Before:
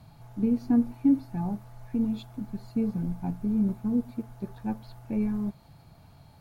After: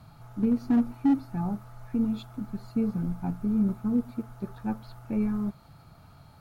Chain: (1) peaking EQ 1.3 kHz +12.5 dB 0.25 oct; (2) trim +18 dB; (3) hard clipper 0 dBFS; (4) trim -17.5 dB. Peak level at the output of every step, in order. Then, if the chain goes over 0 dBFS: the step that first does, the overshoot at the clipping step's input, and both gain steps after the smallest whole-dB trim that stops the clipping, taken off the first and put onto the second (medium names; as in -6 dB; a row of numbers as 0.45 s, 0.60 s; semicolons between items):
-14.0 dBFS, +4.0 dBFS, 0.0 dBFS, -17.5 dBFS; step 2, 4.0 dB; step 2 +14 dB, step 4 -13.5 dB